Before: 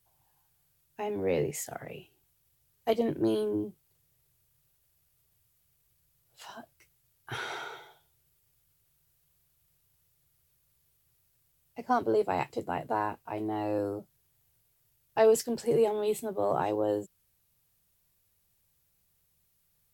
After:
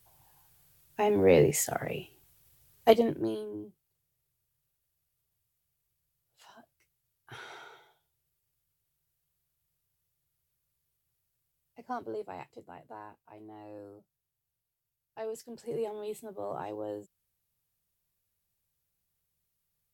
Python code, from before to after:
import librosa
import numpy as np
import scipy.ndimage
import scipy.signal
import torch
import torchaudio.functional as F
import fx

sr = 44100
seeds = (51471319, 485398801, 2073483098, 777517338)

y = fx.gain(x, sr, db=fx.line((2.9, 7.5), (3.04, 1.0), (3.45, -9.5), (11.9, -9.5), (12.77, -16.0), (15.33, -16.0), (15.77, -9.0)))